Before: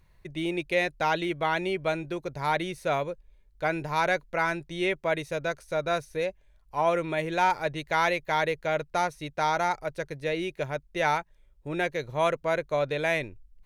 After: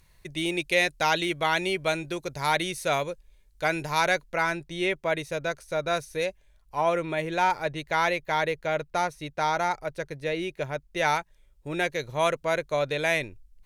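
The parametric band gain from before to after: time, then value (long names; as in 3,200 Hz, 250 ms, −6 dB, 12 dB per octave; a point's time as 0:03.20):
parametric band 9,600 Hz 2.8 octaves
0:03.84 +12.5 dB
0:04.59 +3.5 dB
0:05.82 +3.5 dB
0:06.27 +10 dB
0:06.98 +1 dB
0:10.72 +1 dB
0:11.17 +7.5 dB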